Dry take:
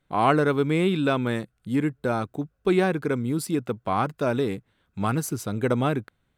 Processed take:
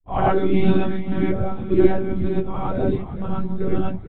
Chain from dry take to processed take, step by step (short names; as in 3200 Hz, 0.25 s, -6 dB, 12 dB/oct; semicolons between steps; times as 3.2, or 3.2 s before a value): per-bin expansion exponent 1.5; plain phase-vocoder stretch 0.64×; tilt -4 dB/oct; frequency-shifting echo 0.439 s, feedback 62%, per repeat -46 Hz, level -14.5 dB; monotone LPC vocoder at 8 kHz 190 Hz; high shelf 3100 Hz +10.5 dB; non-linear reverb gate 0.14 s rising, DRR -6 dB; gain -1.5 dB